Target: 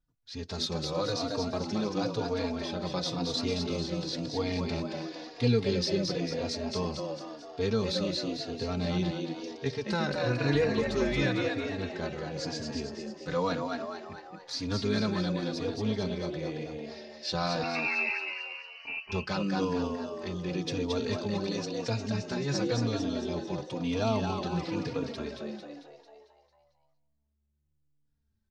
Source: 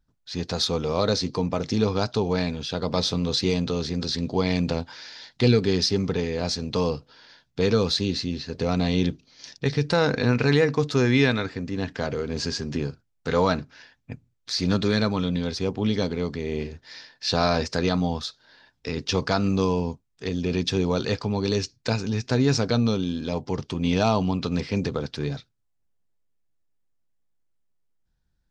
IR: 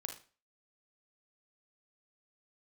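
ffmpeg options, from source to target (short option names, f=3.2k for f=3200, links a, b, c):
-filter_complex "[0:a]asplit=2[a][b];[b]aecho=0:1:209|418|627:0.119|0.0428|0.0154[c];[a][c]amix=inputs=2:normalize=0,asettb=1/sr,asplit=3[d][e][f];[d]atrim=end=10.544[g];[e]atrim=start=10.54:end=11.22,asetpts=PTS-STARTPTS,afade=t=in:d=0.004:c=qsin,afade=t=out:st=0.676:d=0.004:c=qsin,aeval=exprs='val(0)+0.0355*(sin(2*PI*50*n/s)+sin(2*PI*2*50*n/s)/2+sin(2*PI*3*50*n/s)/3+sin(2*PI*4*50*n/s)/4+sin(2*PI*5*50*n/s)/5)':c=same[h];[f]atrim=start=11.216[i];[g][h]acrossfade=d=0.004:c1=hsin:c2=qsin[j];[j][i]acrossfade=d=0.004:c1=qsin:c2=hsin,asettb=1/sr,asplit=3[k][l][m];[k]atrim=end=17.634[n];[l]atrim=start=17.63:end=19.12,asetpts=PTS-STARTPTS,afade=t=in:d=0.004:c=qsin,afade=t=out:st=1.486:d=0.004:c=qsin,lowpass=f=2.4k:t=q:w=0.5098,lowpass=f=2.4k:t=q:w=0.6013,lowpass=f=2.4k:t=q:w=0.9,lowpass=f=2.4k:t=q:w=2.563,afreqshift=-2800[o];[m]atrim=start=19.116[p];[n][o]acrossfade=d=0.004:c1=hsin:c2=qsin[q];[q][p]acrossfade=d=0.004:c1=qsin:c2=hsin,asplit=2[r][s];[s]asplit=7[t][u][v][w][x][y][z];[t]adelay=224,afreqshift=73,volume=-4.5dB[aa];[u]adelay=448,afreqshift=146,volume=-10.2dB[ab];[v]adelay=672,afreqshift=219,volume=-15.9dB[ac];[w]adelay=896,afreqshift=292,volume=-21.5dB[ad];[x]adelay=1120,afreqshift=365,volume=-27.2dB[ae];[y]adelay=1344,afreqshift=438,volume=-32.9dB[af];[z]adelay=1568,afreqshift=511,volume=-38.6dB[ag];[aa][ab][ac][ad][ae][af][ag]amix=inputs=7:normalize=0[ah];[r][ah]amix=inputs=2:normalize=0,asplit=2[ai][aj];[aj]adelay=3.6,afreqshift=-0.97[ak];[ai][ak]amix=inputs=2:normalize=1,volume=-5.5dB"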